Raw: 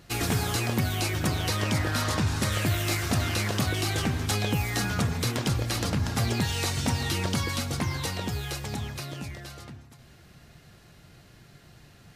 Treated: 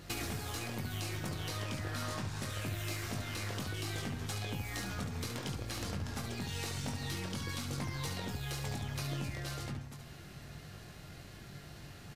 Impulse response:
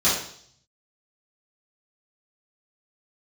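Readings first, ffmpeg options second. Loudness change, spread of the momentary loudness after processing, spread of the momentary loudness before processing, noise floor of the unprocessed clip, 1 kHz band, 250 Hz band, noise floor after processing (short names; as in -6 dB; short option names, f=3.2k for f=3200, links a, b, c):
-11.5 dB, 12 LU, 8 LU, -54 dBFS, -11.0 dB, -11.0 dB, -51 dBFS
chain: -af "acompressor=threshold=-38dB:ratio=16,aeval=exprs='0.0501*(cos(1*acos(clip(val(0)/0.0501,-1,1)))-cos(1*PI/2))+0.00141*(cos(8*acos(clip(val(0)/0.0501,-1,1)))-cos(8*PI/2))':c=same,aecho=1:1:21|71:0.501|0.473,volume=1dB"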